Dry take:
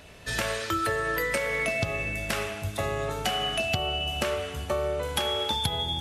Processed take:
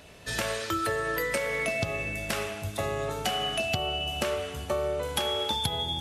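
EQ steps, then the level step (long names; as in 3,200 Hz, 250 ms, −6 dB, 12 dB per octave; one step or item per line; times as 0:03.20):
low-shelf EQ 76 Hz −6.5 dB
parametric band 1,800 Hz −2.5 dB 1.7 octaves
0.0 dB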